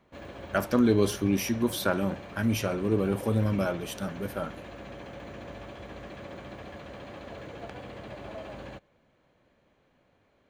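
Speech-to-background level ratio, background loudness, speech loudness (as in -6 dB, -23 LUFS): 15.0 dB, -43.0 LUFS, -28.0 LUFS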